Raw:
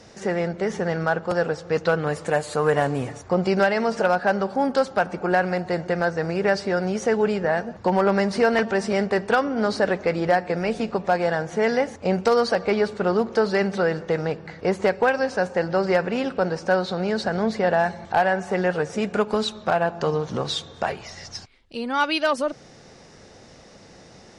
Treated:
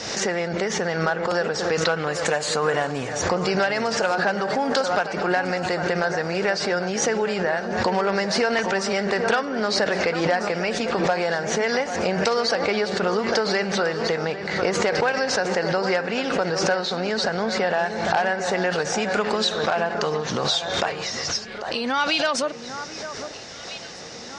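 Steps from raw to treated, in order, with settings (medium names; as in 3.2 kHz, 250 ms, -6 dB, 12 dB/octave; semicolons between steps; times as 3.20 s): low-pass 6.9 kHz 24 dB/octave; tilt EQ +2.5 dB/octave; compression 2:1, threshold -36 dBFS, peak gain reduction 11.5 dB; on a send: echo whose repeats swap between lows and highs 799 ms, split 1.8 kHz, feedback 68%, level -11 dB; on the sum: swell ahead of each attack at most 43 dB/s; trim +8.5 dB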